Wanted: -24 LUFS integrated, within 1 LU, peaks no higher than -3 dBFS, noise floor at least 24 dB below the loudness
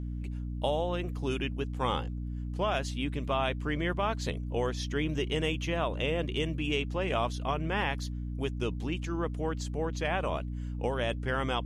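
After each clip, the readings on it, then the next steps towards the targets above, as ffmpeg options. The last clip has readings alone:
hum 60 Hz; highest harmonic 300 Hz; hum level -33 dBFS; loudness -32.5 LUFS; peak level -15.5 dBFS; loudness target -24.0 LUFS
-> -af "bandreject=f=60:t=h:w=6,bandreject=f=120:t=h:w=6,bandreject=f=180:t=h:w=6,bandreject=f=240:t=h:w=6,bandreject=f=300:t=h:w=6"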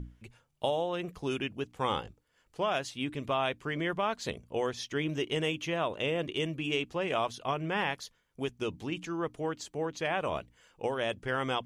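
hum not found; loudness -33.5 LUFS; peak level -16.5 dBFS; loudness target -24.0 LUFS
-> -af "volume=2.99"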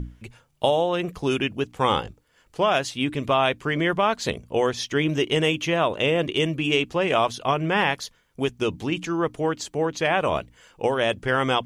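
loudness -24.0 LUFS; peak level -7.0 dBFS; noise floor -61 dBFS

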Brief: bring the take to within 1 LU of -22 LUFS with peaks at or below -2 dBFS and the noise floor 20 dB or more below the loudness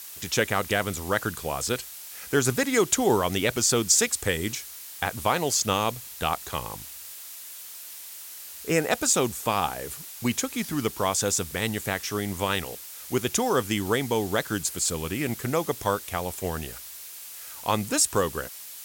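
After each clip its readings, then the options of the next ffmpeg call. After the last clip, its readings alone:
noise floor -42 dBFS; noise floor target -46 dBFS; loudness -26.0 LUFS; peak level -7.0 dBFS; loudness target -22.0 LUFS
-> -af "afftdn=nr=6:nf=-42"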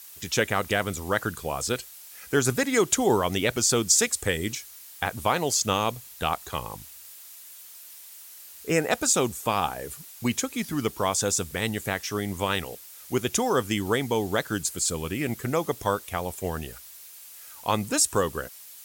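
noise floor -46 dBFS; loudness -26.0 LUFS; peak level -7.0 dBFS; loudness target -22.0 LUFS
-> -af "volume=1.58"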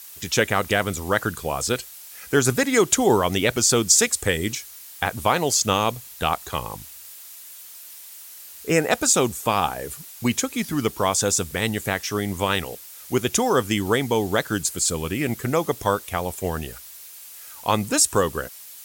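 loudness -22.0 LUFS; peak level -3.0 dBFS; noise floor -42 dBFS

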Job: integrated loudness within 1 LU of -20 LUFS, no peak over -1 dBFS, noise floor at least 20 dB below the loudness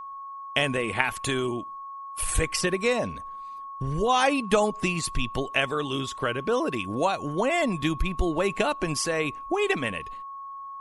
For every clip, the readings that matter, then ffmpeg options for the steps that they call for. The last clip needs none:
steady tone 1.1 kHz; tone level -36 dBFS; loudness -26.5 LUFS; peak level -3.0 dBFS; loudness target -20.0 LUFS
-> -af "bandreject=f=1100:w=30"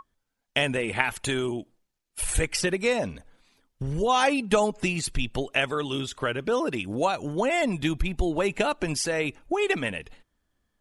steady tone not found; loudness -26.5 LUFS; peak level -3.5 dBFS; loudness target -20.0 LUFS
-> -af "volume=2.11,alimiter=limit=0.891:level=0:latency=1"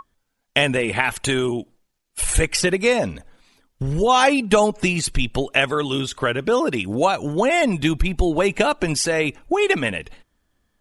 loudness -20.0 LUFS; peak level -1.0 dBFS; noise floor -73 dBFS

